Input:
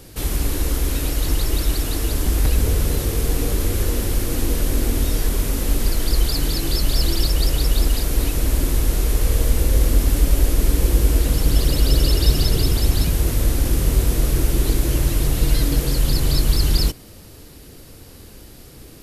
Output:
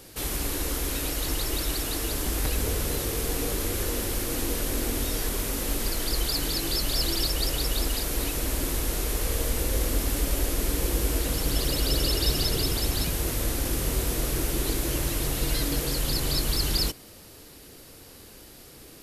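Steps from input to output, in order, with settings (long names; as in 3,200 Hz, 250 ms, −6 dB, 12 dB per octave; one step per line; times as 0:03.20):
low-shelf EQ 230 Hz −10 dB
level −2 dB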